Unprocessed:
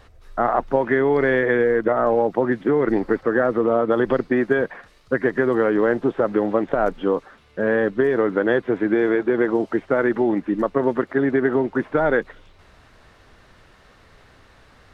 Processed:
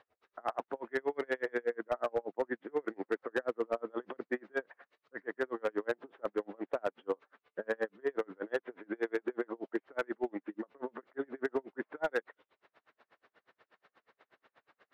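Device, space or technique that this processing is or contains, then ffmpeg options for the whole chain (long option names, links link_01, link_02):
helicopter radio: -af "highpass=370,lowpass=2900,aeval=exprs='val(0)*pow(10,-38*(0.5-0.5*cos(2*PI*8.3*n/s))/20)':channel_layout=same,asoftclip=type=hard:threshold=-16.5dB,volume=-7dB"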